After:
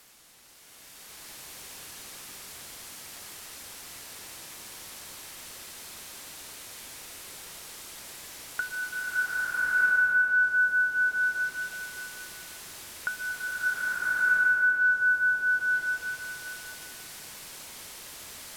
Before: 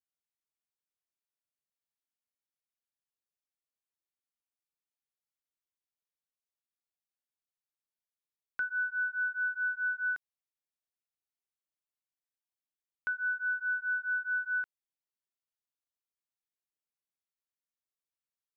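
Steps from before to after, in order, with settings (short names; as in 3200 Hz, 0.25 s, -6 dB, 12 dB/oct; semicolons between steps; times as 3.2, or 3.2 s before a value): requantised 10-bit, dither triangular; treble ducked by the level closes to 980 Hz, closed at -32.5 dBFS; bloom reverb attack 1.28 s, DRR -12 dB; gain +6 dB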